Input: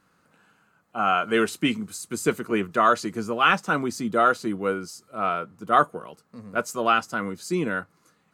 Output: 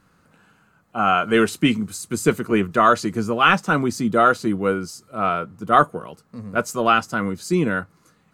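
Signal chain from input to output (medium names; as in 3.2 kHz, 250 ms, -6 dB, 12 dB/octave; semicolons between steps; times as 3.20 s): bass shelf 130 Hz +12 dB; trim +3.5 dB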